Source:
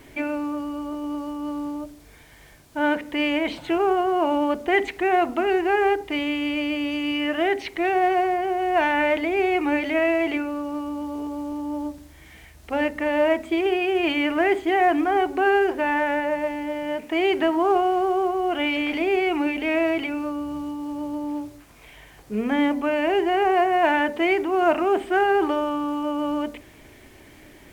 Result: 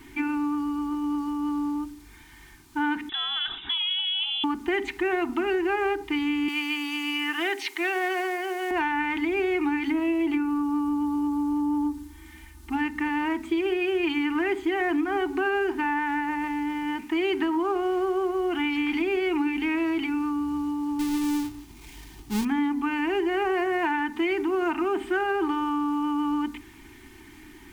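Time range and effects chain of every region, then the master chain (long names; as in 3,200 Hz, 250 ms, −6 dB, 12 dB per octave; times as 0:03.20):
0:03.09–0:04.44: voice inversion scrambler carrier 3,700 Hz + downward compressor 2 to 1, threshold −29 dBFS
0:06.48–0:08.71: high-pass filter 470 Hz + high-shelf EQ 3,600 Hz +8.5 dB
0:09.87–0:12.76: parametric band 2,300 Hz −4.5 dB 1.7 octaves + comb filter 3.4 ms, depth 57%
0:20.99–0:22.45: each half-wave held at its own peak + parametric band 1,400 Hz −10 dB 1.3 octaves
whole clip: Chebyshev band-stop filter 380–830 Hz, order 2; comb filter 3.3 ms, depth 36%; downward compressor, threshold −22 dBFS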